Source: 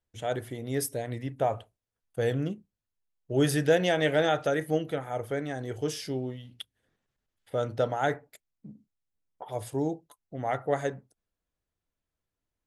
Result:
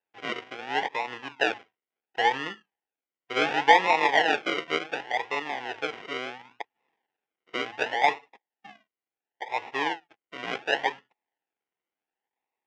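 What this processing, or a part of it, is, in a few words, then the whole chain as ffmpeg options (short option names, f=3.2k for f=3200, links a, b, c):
circuit-bent sampling toy: -af "acrusher=samples=40:mix=1:aa=0.000001:lfo=1:lforange=24:lforate=0.7,highpass=570,equalizer=f=590:t=q:w=4:g=-8,equalizer=f=840:t=q:w=4:g=9,equalizer=f=1.2k:t=q:w=4:g=-7,equalizer=f=1.9k:t=q:w=4:g=6,equalizer=f=2.8k:t=q:w=4:g=5,equalizer=f=4.3k:t=q:w=4:g=-9,lowpass=f=4.6k:w=0.5412,lowpass=f=4.6k:w=1.3066,volume=5dB"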